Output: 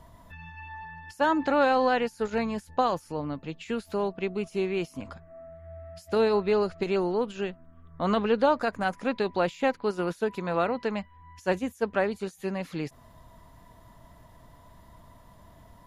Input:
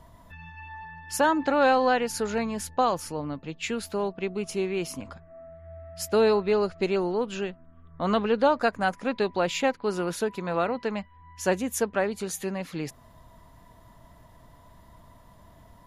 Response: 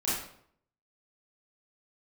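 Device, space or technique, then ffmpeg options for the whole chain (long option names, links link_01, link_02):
de-esser from a sidechain: -filter_complex "[0:a]asplit=2[link_01][link_02];[link_02]highpass=frequency=6000:width=0.5412,highpass=frequency=6000:width=1.3066,apad=whole_len=699492[link_03];[link_01][link_03]sidechaincompress=threshold=-54dB:ratio=12:attack=4.1:release=25"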